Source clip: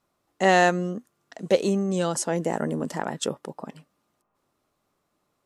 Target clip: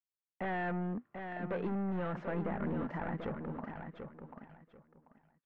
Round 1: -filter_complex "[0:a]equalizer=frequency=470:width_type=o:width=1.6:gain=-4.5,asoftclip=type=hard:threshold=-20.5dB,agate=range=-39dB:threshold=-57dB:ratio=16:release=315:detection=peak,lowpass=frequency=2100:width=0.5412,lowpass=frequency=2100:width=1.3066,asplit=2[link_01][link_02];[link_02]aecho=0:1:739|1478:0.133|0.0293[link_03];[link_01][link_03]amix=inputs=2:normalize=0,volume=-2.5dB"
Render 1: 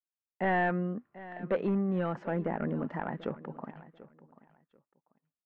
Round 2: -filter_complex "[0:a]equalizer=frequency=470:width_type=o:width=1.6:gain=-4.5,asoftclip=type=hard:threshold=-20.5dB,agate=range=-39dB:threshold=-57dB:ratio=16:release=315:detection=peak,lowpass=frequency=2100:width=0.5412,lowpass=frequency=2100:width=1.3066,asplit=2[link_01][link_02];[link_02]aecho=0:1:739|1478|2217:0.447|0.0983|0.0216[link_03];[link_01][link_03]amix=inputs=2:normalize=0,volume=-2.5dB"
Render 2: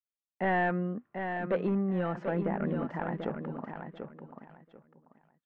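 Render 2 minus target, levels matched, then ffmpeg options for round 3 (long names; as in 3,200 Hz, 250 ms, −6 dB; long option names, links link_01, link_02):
hard clipping: distortion −6 dB
-filter_complex "[0:a]equalizer=frequency=470:width_type=o:width=1.6:gain=-4.5,asoftclip=type=hard:threshold=-31dB,agate=range=-39dB:threshold=-57dB:ratio=16:release=315:detection=peak,lowpass=frequency=2100:width=0.5412,lowpass=frequency=2100:width=1.3066,asplit=2[link_01][link_02];[link_02]aecho=0:1:739|1478|2217:0.447|0.0983|0.0216[link_03];[link_01][link_03]amix=inputs=2:normalize=0,volume=-2.5dB"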